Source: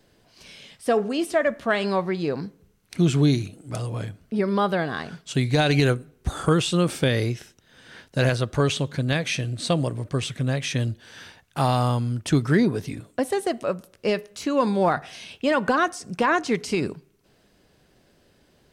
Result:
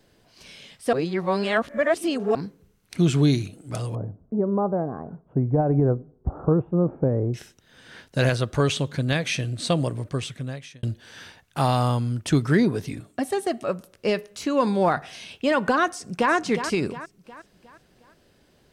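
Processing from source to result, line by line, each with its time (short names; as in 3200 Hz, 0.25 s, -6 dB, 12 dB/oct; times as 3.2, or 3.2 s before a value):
0.93–2.35 reverse
3.95–7.34 inverse Chebyshev low-pass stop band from 4000 Hz, stop band 70 dB
9.98–10.83 fade out linear
12.99–13.69 notch comb 500 Hz
15.89–16.33 echo throw 0.36 s, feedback 45%, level -9 dB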